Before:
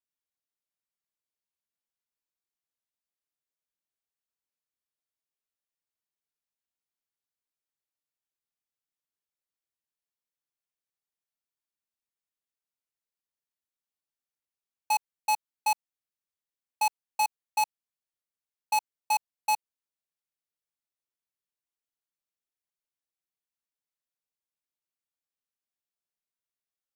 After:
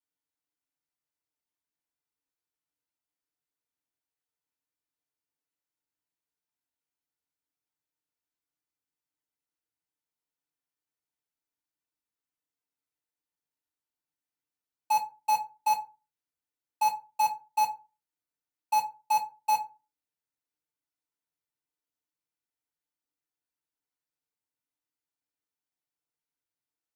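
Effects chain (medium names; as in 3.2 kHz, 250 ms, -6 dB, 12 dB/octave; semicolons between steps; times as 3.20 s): FDN reverb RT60 0.3 s, low-frequency decay 1.2×, high-frequency decay 0.55×, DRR -7.5 dB; trim -8 dB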